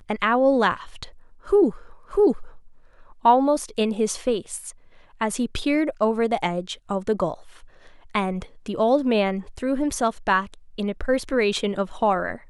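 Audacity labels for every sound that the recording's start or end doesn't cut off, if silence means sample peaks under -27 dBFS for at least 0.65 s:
3.250000	7.340000	sound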